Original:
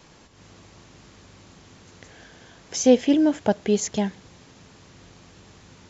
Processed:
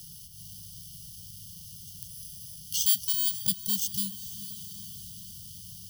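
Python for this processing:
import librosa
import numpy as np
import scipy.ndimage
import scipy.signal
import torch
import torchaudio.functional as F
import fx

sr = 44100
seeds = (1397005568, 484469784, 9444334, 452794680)

y = fx.bit_reversed(x, sr, seeds[0], block=32)
y = fx.brickwall_bandstop(y, sr, low_hz=190.0, high_hz=2800.0)
y = fx.echo_diffused(y, sr, ms=459, feedback_pct=49, wet_db=-16.0)
y = fx.band_squash(y, sr, depth_pct=40)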